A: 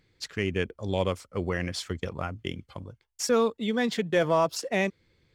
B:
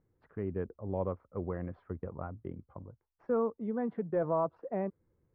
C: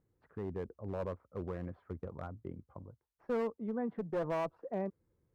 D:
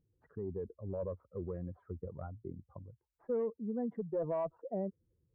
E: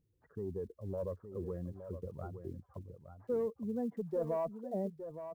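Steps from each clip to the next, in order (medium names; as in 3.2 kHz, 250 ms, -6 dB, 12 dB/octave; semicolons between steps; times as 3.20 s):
low-pass 1.2 kHz 24 dB/octave; trim -6.5 dB
one-sided clip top -30 dBFS, bottom -23.5 dBFS; trim -2.5 dB
spectral contrast enhancement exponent 1.7
block-companded coder 7-bit; delay 866 ms -10 dB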